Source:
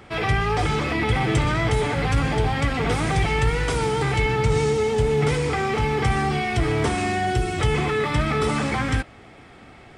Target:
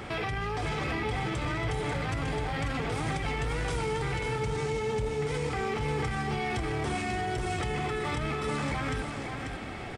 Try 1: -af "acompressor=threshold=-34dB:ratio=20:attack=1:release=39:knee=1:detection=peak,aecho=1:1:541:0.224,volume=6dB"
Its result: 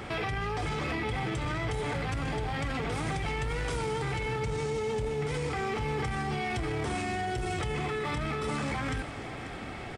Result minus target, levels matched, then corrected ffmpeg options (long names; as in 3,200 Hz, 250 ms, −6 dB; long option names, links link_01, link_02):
echo-to-direct −7.5 dB
-af "acompressor=threshold=-34dB:ratio=20:attack=1:release=39:knee=1:detection=peak,aecho=1:1:541:0.531,volume=6dB"